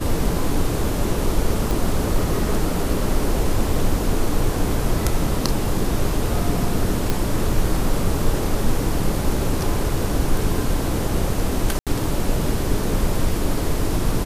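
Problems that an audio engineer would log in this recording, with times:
0:01.71: click
0:07.10: click
0:11.79–0:11.87: drop-out 77 ms

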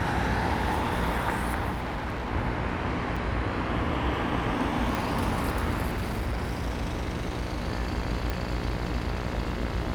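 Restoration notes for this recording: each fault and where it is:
mains buzz 60 Hz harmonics 37 −34 dBFS
0:01.71–0:02.30: clipping −28 dBFS
0:03.16: drop-out 4.8 ms
0:04.95: click
0:05.86–0:07.68: clipping −25.5 dBFS
0:08.30: click

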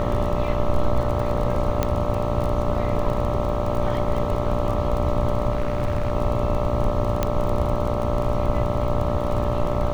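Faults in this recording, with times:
mains buzz 60 Hz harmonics 22 −27 dBFS
surface crackle 26 per second −27 dBFS
whistle 590 Hz −27 dBFS
0:01.83: click −8 dBFS
0:05.51–0:06.12: clipping −17.5 dBFS
0:07.23: click −8 dBFS

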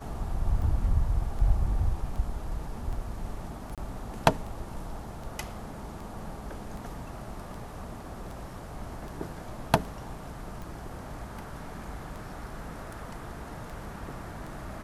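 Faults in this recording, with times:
scratch tick 78 rpm
0:03.75–0:03.78: drop-out 27 ms

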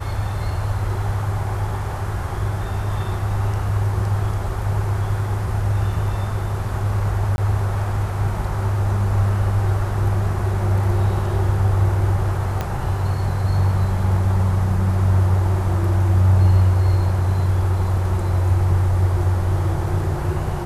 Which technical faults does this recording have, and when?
0:07.36–0:07.38: drop-out 21 ms
0:12.61: click −10 dBFS

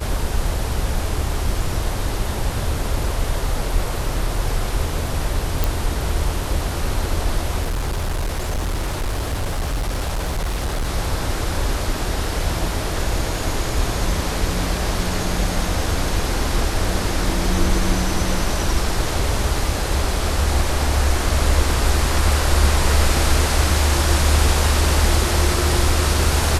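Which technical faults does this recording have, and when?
0:05.64: click
0:07.62–0:10.88: clipping −18.5 dBFS

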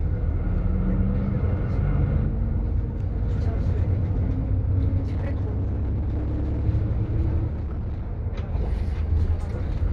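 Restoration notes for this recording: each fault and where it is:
0:05.00–0:06.66: clipping −22.5 dBFS
0:07.49–0:08.02: clipping −25 dBFS

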